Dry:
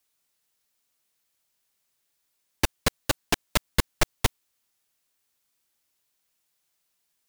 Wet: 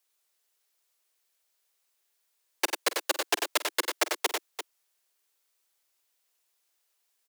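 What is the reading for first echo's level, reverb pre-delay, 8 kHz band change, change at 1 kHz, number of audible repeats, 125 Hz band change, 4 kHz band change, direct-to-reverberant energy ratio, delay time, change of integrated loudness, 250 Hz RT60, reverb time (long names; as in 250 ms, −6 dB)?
−15.5 dB, no reverb audible, 0.0 dB, 0.0 dB, 3, below −40 dB, 0.0 dB, no reverb audible, 48 ms, −1.0 dB, no reverb audible, no reverb audible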